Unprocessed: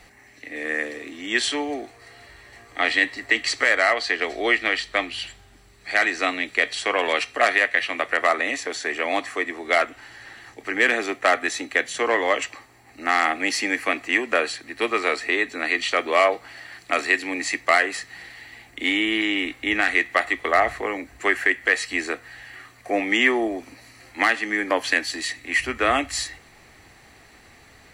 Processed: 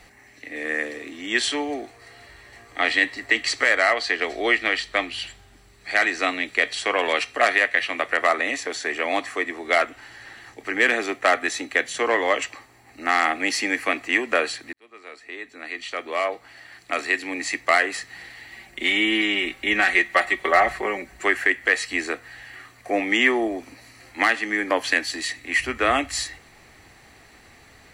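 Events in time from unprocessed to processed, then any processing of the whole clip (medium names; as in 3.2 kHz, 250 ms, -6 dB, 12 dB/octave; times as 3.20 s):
14.73–17.92 s: fade in
18.50–21.25 s: comb 5.3 ms, depth 69%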